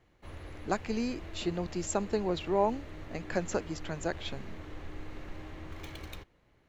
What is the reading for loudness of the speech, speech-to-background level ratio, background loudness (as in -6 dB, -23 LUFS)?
-34.0 LUFS, 12.5 dB, -46.5 LUFS